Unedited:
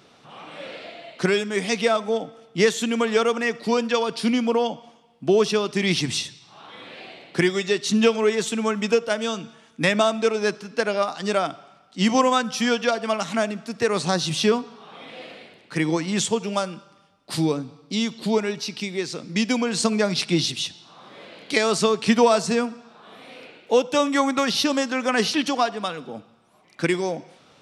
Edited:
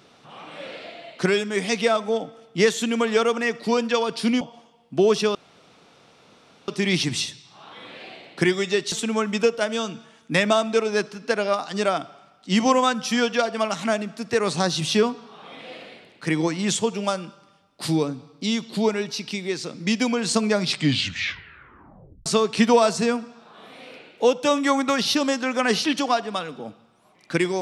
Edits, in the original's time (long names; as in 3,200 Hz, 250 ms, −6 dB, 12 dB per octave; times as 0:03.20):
0:04.41–0:04.71: remove
0:05.65: splice in room tone 1.33 s
0:07.89–0:08.41: remove
0:20.14: tape stop 1.61 s